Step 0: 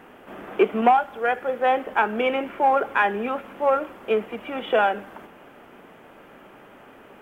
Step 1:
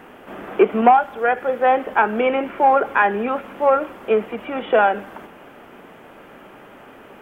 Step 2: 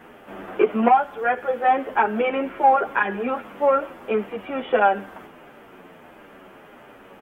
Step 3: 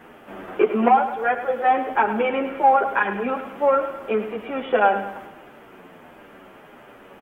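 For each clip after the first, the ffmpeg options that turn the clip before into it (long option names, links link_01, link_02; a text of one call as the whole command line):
ffmpeg -i in.wav -filter_complex "[0:a]acrossover=split=2700[link_01][link_02];[link_02]acompressor=threshold=-53dB:ratio=4:attack=1:release=60[link_03];[link_01][link_03]amix=inputs=2:normalize=0,volume=4.5dB" out.wav
ffmpeg -i in.wav -filter_complex "[0:a]asplit=2[link_01][link_02];[link_02]adelay=9.3,afreqshift=-1.5[link_03];[link_01][link_03]amix=inputs=2:normalize=1" out.wav
ffmpeg -i in.wav -af "aecho=1:1:105|210|315|420|525:0.282|0.132|0.0623|0.0293|0.0138" out.wav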